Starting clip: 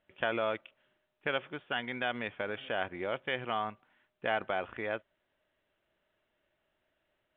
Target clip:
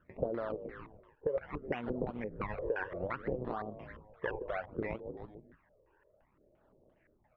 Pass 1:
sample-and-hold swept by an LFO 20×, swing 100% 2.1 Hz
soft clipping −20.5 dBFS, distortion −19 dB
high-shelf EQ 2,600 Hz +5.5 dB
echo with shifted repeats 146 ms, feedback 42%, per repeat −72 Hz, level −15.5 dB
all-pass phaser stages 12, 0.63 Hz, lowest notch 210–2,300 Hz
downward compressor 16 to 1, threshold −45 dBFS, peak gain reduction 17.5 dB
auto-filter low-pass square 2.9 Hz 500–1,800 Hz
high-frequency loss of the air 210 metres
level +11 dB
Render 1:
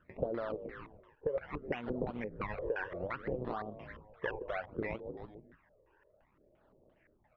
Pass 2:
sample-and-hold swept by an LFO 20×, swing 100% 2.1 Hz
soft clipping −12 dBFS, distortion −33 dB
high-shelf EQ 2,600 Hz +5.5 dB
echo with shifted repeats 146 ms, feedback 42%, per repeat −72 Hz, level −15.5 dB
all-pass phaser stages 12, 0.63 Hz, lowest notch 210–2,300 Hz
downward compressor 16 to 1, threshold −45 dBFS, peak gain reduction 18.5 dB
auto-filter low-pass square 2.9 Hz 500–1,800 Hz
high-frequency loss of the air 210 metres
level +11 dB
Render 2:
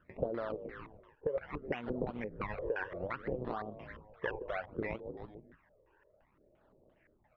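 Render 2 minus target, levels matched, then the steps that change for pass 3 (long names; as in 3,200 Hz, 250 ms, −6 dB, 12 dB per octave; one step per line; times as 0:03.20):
4,000 Hz band +3.5 dB
change: high-shelf EQ 2,600 Hz −2 dB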